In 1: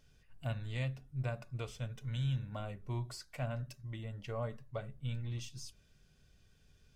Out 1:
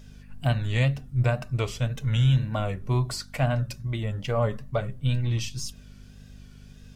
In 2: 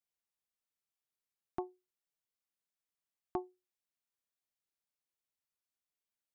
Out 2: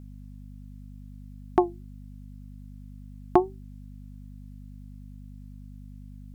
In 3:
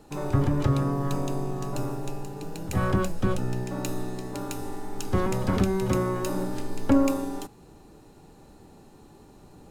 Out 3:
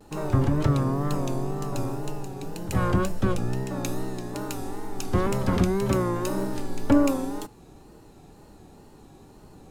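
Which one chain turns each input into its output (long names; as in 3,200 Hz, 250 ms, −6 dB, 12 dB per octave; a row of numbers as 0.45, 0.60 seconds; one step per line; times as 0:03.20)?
tape wow and flutter 90 cents
hum with harmonics 50 Hz, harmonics 5, −62 dBFS −4 dB per octave
loudness normalisation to −27 LKFS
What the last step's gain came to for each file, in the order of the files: +14.0, +18.0, +1.0 decibels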